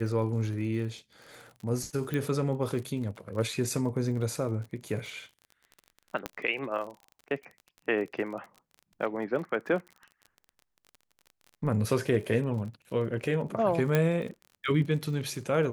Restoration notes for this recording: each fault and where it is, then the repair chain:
surface crackle 34 per second −39 dBFS
0:02.14: click −19 dBFS
0:06.26: click −16 dBFS
0:13.95: click −12 dBFS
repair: click removal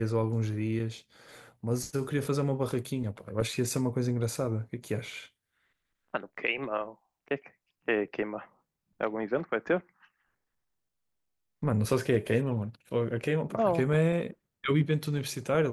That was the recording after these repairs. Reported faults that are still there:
none of them is left

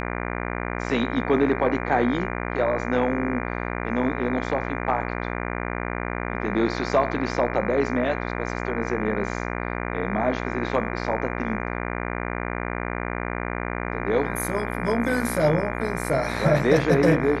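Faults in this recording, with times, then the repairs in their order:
mains buzz 60 Hz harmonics 40 −29 dBFS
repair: hum removal 60 Hz, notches 40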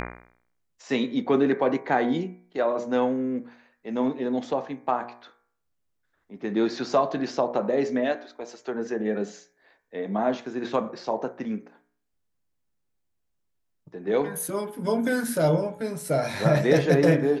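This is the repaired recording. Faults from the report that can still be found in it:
none of them is left

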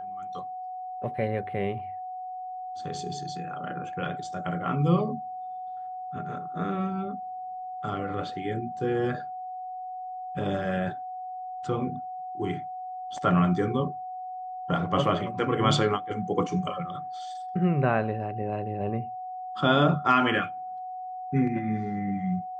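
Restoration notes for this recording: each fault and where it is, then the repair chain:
whistle 740 Hz −34 dBFS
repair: notch filter 740 Hz, Q 30

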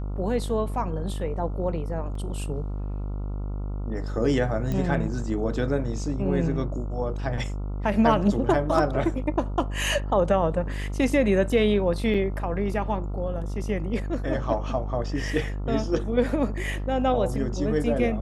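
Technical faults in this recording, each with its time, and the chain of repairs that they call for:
mains buzz 50 Hz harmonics 28 −30 dBFS
0:02.15: drop-out 3.6 ms
0:04.72: click −17 dBFS
0:12.14–0:12.15: drop-out 5.8 ms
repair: click removal
hum removal 50 Hz, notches 28
repair the gap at 0:02.15, 3.6 ms
repair the gap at 0:12.14, 5.8 ms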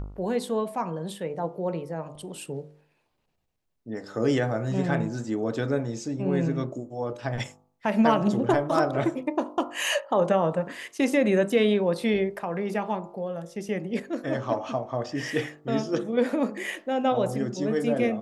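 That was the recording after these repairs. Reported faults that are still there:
0:04.72: click

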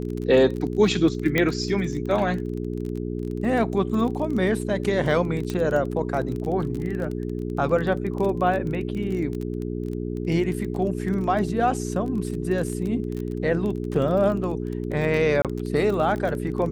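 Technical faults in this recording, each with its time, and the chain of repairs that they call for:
surface crackle 23 per second −29 dBFS
mains hum 60 Hz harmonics 7 −29 dBFS
0:01.38: click −8 dBFS
0:05.50: click −15 dBFS
0:15.42–0:15.45: drop-out 27 ms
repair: click removal
hum removal 60 Hz, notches 7
repair the gap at 0:15.42, 27 ms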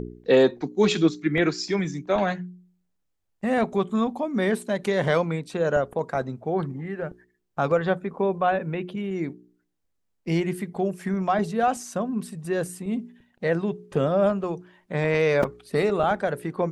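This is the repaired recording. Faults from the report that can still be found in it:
0:01.38: click

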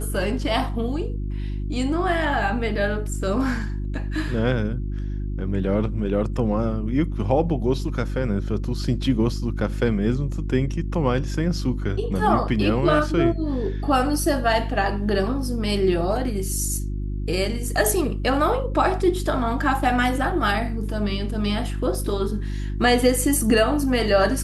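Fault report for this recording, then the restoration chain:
mains hum 50 Hz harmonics 7 −27 dBFS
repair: hum removal 50 Hz, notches 7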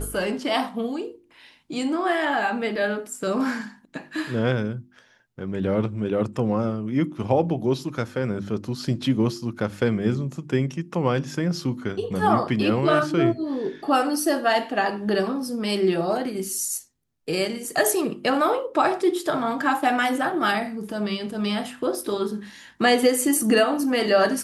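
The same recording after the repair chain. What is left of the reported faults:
none of them is left

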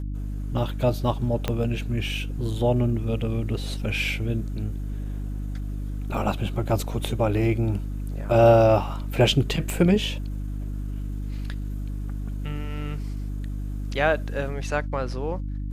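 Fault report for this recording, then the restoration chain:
mains hum 50 Hz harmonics 6 −30 dBFS
0:01.48: click −11 dBFS
0:09.70: click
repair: click removal
hum removal 50 Hz, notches 6

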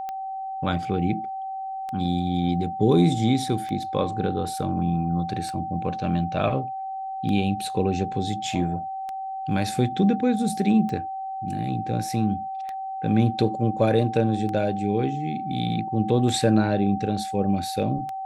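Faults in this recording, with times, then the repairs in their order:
scratch tick 33 1/3 rpm −20 dBFS
whistle 770 Hz −29 dBFS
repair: click removal
notch filter 770 Hz, Q 30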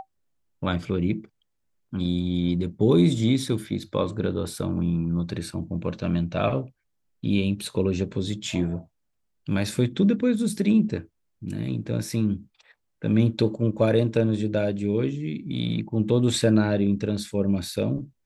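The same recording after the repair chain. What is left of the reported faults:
none of them is left

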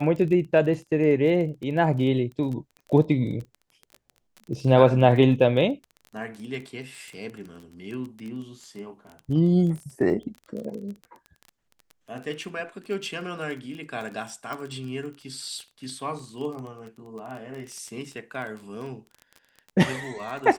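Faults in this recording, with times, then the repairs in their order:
surface crackle 21 per second −33 dBFS
0:14.53: click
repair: click removal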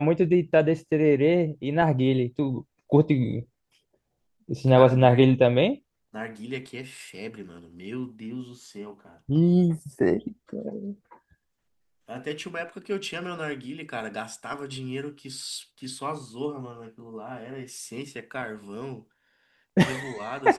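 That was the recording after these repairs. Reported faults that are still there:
none of them is left

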